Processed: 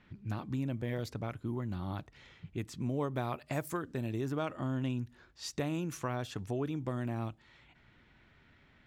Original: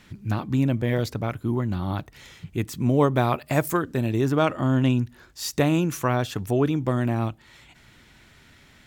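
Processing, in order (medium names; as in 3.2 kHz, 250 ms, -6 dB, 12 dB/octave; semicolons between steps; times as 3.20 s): compression 2:1, threshold -25 dBFS, peak gain reduction 6.5 dB; level-controlled noise filter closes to 2.5 kHz, open at -23.5 dBFS; trim -9 dB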